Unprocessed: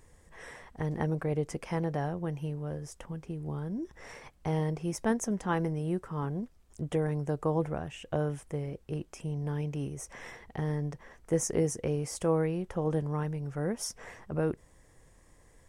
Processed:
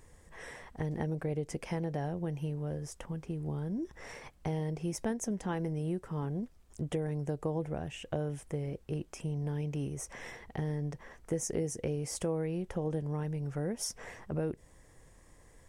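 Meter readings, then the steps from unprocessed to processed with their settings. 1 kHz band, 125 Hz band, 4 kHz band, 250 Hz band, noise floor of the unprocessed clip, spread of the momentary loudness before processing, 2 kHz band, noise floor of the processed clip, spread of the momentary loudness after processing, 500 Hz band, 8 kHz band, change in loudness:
-6.0 dB, -2.5 dB, -0.5 dB, -3.0 dB, -61 dBFS, 12 LU, -4.0 dB, -60 dBFS, 8 LU, -4.0 dB, -1.5 dB, -3.0 dB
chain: dynamic EQ 1200 Hz, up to -7 dB, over -53 dBFS, Q 1.8; compressor 3:1, threshold -32 dBFS, peak gain reduction 8 dB; gain +1 dB

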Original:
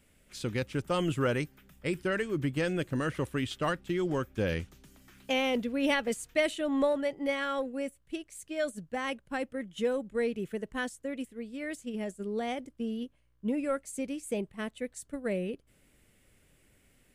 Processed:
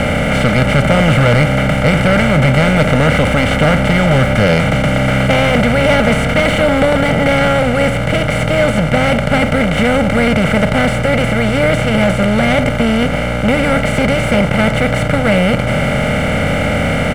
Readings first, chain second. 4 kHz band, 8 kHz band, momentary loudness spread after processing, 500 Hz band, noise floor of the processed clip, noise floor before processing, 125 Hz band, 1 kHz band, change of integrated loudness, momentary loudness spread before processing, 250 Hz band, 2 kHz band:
+20.5 dB, +16.5 dB, 4 LU, +19.0 dB, -16 dBFS, -67 dBFS, +26.0 dB, +22.0 dB, +20.5 dB, 10 LU, +19.5 dB, +22.5 dB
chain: per-bin compression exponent 0.2; tone controls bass +9 dB, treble -7 dB; comb 1.4 ms, depth 70%; sample leveller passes 2; flange 0.3 Hz, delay 3.7 ms, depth 2.9 ms, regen -65%; gain +5 dB

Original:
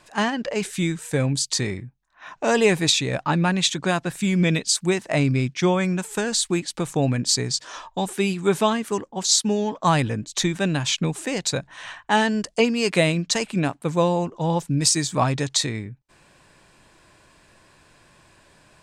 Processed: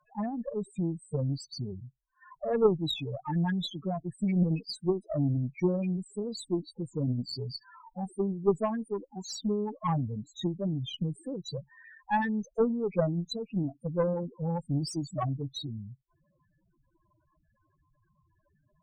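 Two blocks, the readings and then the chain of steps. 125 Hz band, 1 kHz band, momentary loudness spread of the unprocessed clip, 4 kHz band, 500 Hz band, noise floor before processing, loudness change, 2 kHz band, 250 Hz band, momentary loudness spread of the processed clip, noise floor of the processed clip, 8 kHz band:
-7.0 dB, -11.0 dB, 7 LU, -16.0 dB, -7.5 dB, -59 dBFS, -9.5 dB, -18.0 dB, -7.5 dB, 11 LU, -74 dBFS, -25.0 dB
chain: loudest bins only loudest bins 4; added harmonics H 2 -17 dB, 3 -16 dB, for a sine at -9.5 dBFS; gain -1.5 dB

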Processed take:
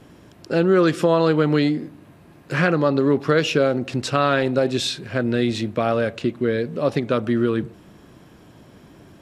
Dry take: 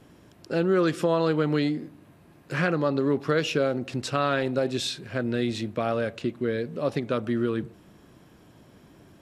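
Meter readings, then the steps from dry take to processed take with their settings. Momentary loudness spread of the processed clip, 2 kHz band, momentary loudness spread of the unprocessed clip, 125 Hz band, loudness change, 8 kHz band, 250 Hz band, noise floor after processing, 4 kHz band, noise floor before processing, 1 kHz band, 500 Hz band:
7 LU, +6.0 dB, 7 LU, +6.0 dB, +6.0 dB, +5.0 dB, +6.0 dB, -49 dBFS, +5.5 dB, -55 dBFS, +6.0 dB, +6.0 dB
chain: high shelf 9800 Hz -4 dB; gain +6 dB

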